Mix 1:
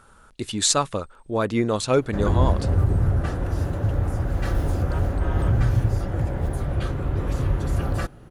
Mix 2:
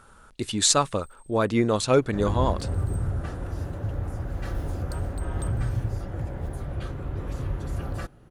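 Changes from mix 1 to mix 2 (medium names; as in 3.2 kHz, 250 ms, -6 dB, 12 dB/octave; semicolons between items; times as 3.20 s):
first sound: remove distance through air 110 m; second sound -7.0 dB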